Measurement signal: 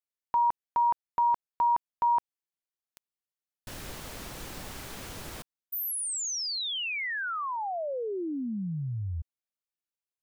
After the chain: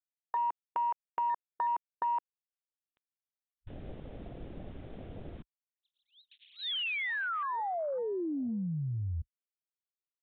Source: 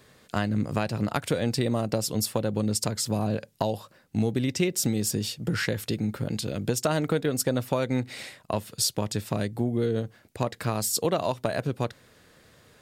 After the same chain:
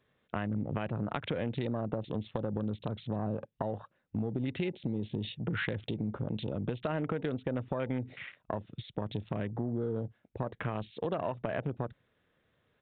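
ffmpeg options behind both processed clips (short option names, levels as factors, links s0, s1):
-af "afwtdn=0.0112,acompressor=threshold=0.0355:ratio=5:attack=3.8:release=127:knee=6:detection=peak,aresample=8000,aresample=44100"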